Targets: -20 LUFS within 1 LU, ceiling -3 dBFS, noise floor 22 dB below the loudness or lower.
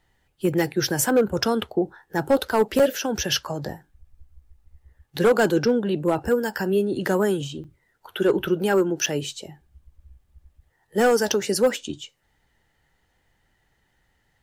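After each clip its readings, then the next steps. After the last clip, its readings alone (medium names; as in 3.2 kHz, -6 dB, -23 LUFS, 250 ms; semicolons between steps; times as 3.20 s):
clipped samples 0.6%; clipping level -12.0 dBFS; dropouts 3; longest dropout 5.5 ms; loudness -23.0 LUFS; peak level -12.0 dBFS; loudness target -20.0 LUFS
-> clip repair -12 dBFS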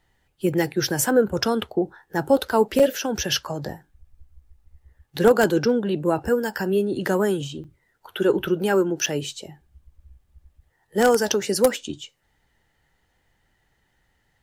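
clipped samples 0.0%; dropouts 3; longest dropout 5.5 ms
-> interpolate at 2.79/7.64/9.06 s, 5.5 ms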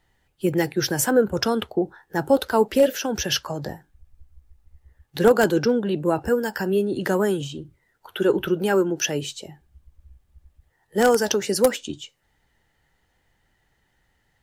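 dropouts 0; loudness -22.5 LUFS; peak level -3.0 dBFS; loudness target -20.0 LUFS
-> trim +2.5 dB; peak limiter -3 dBFS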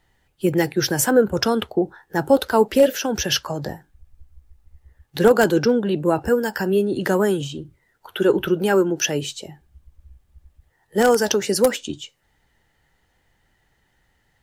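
loudness -20.0 LUFS; peak level -3.0 dBFS; noise floor -66 dBFS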